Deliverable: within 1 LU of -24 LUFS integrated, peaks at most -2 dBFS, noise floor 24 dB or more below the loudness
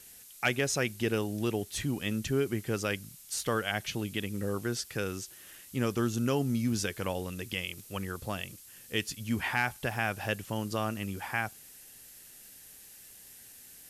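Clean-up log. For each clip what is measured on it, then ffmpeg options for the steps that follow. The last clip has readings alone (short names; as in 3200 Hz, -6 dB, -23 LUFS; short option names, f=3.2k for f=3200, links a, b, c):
noise floor -52 dBFS; noise floor target -57 dBFS; loudness -32.5 LUFS; peak -15.5 dBFS; loudness target -24.0 LUFS
-> -af "afftdn=nr=6:nf=-52"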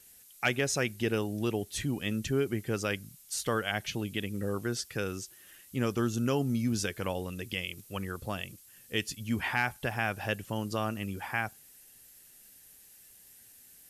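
noise floor -57 dBFS; loudness -33.0 LUFS; peak -15.5 dBFS; loudness target -24.0 LUFS
-> -af "volume=9dB"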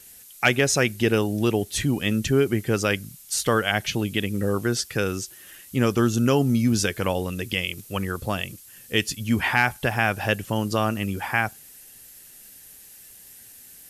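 loudness -24.0 LUFS; peak -6.5 dBFS; noise floor -48 dBFS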